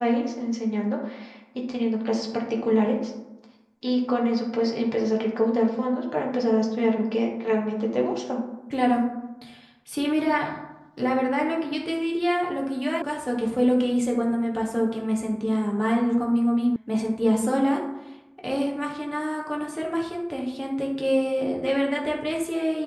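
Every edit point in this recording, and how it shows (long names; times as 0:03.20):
0:13.02: cut off before it has died away
0:16.76: cut off before it has died away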